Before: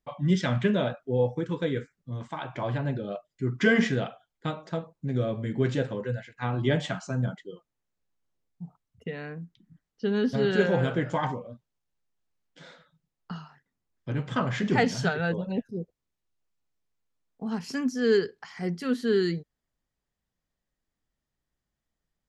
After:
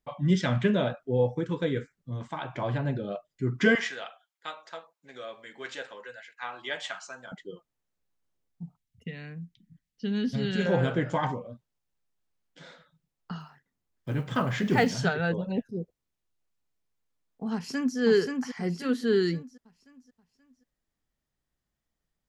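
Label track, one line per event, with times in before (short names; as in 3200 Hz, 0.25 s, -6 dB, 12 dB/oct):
3.750000	7.320000	HPF 960 Hz
8.630000	10.660000	band shelf 690 Hz -10 dB 2.6 oct
13.400000	14.950000	block floating point 7-bit
17.530000	17.980000	echo throw 0.53 s, feedback 40%, level -3.5 dB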